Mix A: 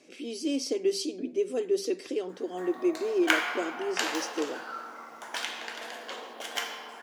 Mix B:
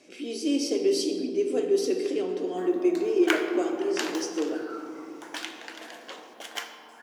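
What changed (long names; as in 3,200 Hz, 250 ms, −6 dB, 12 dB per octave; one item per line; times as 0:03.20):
speech: send on
background: send −7.0 dB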